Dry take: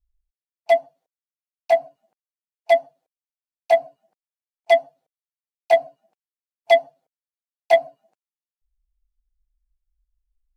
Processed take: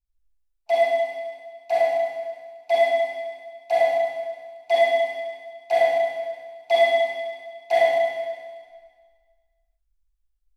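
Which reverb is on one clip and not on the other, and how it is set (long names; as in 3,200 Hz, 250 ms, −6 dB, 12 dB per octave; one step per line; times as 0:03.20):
four-comb reverb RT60 1.7 s, combs from 33 ms, DRR −8.5 dB
level −8 dB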